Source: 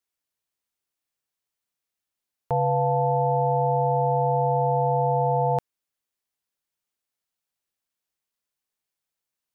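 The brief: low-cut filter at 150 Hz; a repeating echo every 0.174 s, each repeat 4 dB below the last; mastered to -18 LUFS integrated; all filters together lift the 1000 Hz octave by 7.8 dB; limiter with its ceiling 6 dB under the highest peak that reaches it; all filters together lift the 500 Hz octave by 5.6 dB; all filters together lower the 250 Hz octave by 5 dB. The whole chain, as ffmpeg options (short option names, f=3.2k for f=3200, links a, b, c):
-af "highpass=150,equalizer=f=250:t=o:g=-6.5,equalizer=f=500:t=o:g=5,equalizer=f=1k:t=o:g=8.5,alimiter=limit=-14dB:level=0:latency=1,aecho=1:1:174|348|522|696|870|1044|1218|1392|1566:0.631|0.398|0.25|0.158|0.0994|0.0626|0.0394|0.0249|0.0157,volume=0.5dB"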